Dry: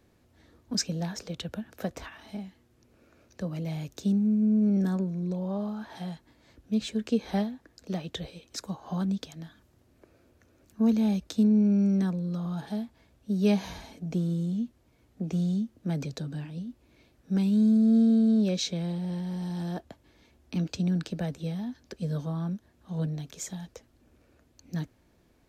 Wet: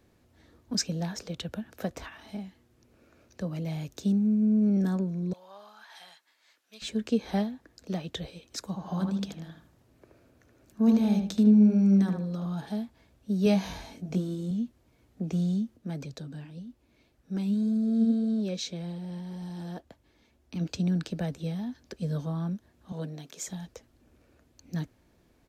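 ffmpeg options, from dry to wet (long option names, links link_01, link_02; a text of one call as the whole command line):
ffmpeg -i in.wav -filter_complex "[0:a]asettb=1/sr,asplit=3[link_01][link_02][link_03];[link_01]atrim=end=5.334[link_04];[link_02]atrim=start=5.33:end=6.82,asetpts=PTS-STARTPTS,afade=type=in:duration=0.004:curve=qsin,afade=type=out:start_time=1.486:duration=0.004:curve=qsin,highpass=1300[link_05];[link_03]atrim=start=6.816[link_06];[link_04][link_05]acrossfade=duration=0.004:curve1=hsin:curve2=qsin[link_07];[link_07][link_06]acrossfade=duration=0.004:curve1=qsin:curve2=hsin,asplit=3[link_08][link_09][link_10];[link_08]afade=type=out:start_time=8.74:duration=0.02[link_11];[link_09]asplit=2[link_12][link_13];[link_13]adelay=76,lowpass=frequency=2100:poles=1,volume=-3.5dB,asplit=2[link_14][link_15];[link_15]adelay=76,lowpass=frequency=2100:poles=1,volume=0.33,asplit=2[link_16][link_17];[link_17]adelay=76,lowpass=frequency=2100:poles=1,volume=0.33,asplit=2[link_18][link_19];[link_19]adelay=76,lowpass=frequency=2100:poles=1,volume=0.33[link_20];[link_12][link_14][link_16][link_18][link_20]amix=inputs=5:normalize=0,afade=type=in:start_time=8.74:duration=0.02,afade=type=out:start_time=12.44:duration=0.02[link_21];[link_10]afade=type=in:start_time=12.44:duration=0.02[link_22];[link_11][link_21][link_22]amix=inputs=3:normalize=0,asettb=1/sr,asplit=3[link_23][link_24][link_25];[link_23]atrim=end=13.444[link_26];[link_24]atrim=start=13.44:end=14.51,asetpts=PTS-STARTPTS,afade=type=in:duration=0.004:curve=qsin,afade=type=out:start_time=1.066:duration=0.004:curve=qsin,asplit=2[link_27][link_28];[link_28]adelay=21,volume=-4.5dB[link_29];[link_27][link_29]amix=inputs=2:normalize=0,atrim=end_sample=47187[link_30];[link_25]atrim=start=14.506[link_31];[link_26][link_30]acrossfade=duration=0.004:curve1=hsin:curve2=qsin[link_32];[link_32][link_31]acrossfade=duration=0.004:curve1=qsin:curve2=hsin,asplit=3[link_33][link_34][link_35];[link_33]afade=type=out:start_time=15.76:duration=0.02[link_36];[link_34]flanger=delay=0.6:depth=4.4:regen=72:speed=1.8:shape=triangular,afade=type=in:start_time=15.76:duration=0.02,afade=type=out:start_time=20.6:duration=0.02[link_37];[link_35]afade=type=in:start_time=20.6:duration=0.02[link_38];[link_36][link_37][link_38]amix=inputs=3:normalize=0,asettb=1/sr,asplit=3[link_39][link_40][link_41];[link_39]atrim=end=22.924[link_42];[link_40]atrim=start=22.92:end=23.47,asetpts=PTS-STARTPTS,afade=type=in:duration=0.004:curve=qsin,afade=type=out:start_time=0.546:duration=0.004:curve=qsin,highpass=230[link_43];[link_41]atrim=start=23.466[link_44];[link_42][link_43]acrossfade=duration=0.004:curve1=hsin:curve2=qsin[link_45];[link_45][link_44]acrossfade=duration=0.004:curve1=qsin:curve2=hsin" out.wav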